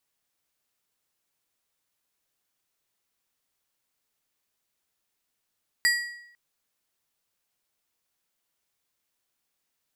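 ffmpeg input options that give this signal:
-f lavfi -i "aevalsrc='0.126*pow(10,-3*t/0.78)*sin(2*PI*1920*t)+0.075*pow(10,-3*t/0.593)*sin(2*PI*4800*t)+0.0447*pow(10,-3*t/0.515)*sin(2*PI*7680*t)+0.0266*pow(10,-3*t/0.481)*sin(2*PI*9600*t)+0.0158*pow(10,-3*t/0.445)*sin(2*PI*12480*t)':d=0.5:s=44100"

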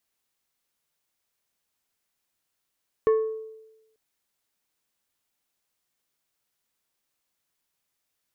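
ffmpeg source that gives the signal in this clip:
-f lavfi -i "aevalsrc='0.178*pow(10,-3*t/1.01)*sin(2*PI*440*t)+0.0447*pow(10,-3*t/0.532)*sin(2*PI*1100*t)+0.0112*pow(10,-3*t/0.383)*sin(2*PI*1760*t)+0.00282*pow(10,-3*t/0.327)*sin(2*PI*2200*t)+0.000708*pow(10,-3*t/0.272)*sin(2*PI*2860*t)':d=0.89:s=44100"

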